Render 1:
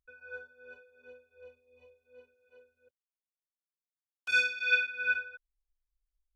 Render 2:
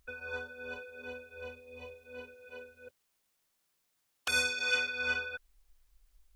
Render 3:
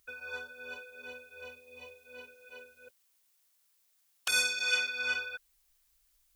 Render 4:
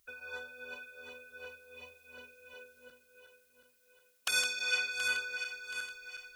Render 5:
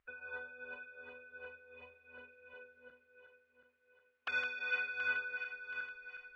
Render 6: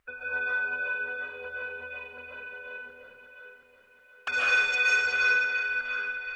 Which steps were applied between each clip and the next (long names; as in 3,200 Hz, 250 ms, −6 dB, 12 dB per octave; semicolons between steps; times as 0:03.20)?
every bin compressed towards the loudest bin 2 to 1
spectral tilt +2.5 dB per octave; level −2 dB
feedback delay that plays each chunk backwards 363 ms, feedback 64%, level −8.5 dB; harmonic and percussive parts rebalanced harmonic −3 dB
transistor ladder low-pass 2,600 Hz, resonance 25%; level +3 dB
sine wavefolder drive 5 dB, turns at −23 dBFS; comb and all-pass reverb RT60 0.81 s, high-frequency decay 1×, pre-delay 100 ms, DRR −6 dB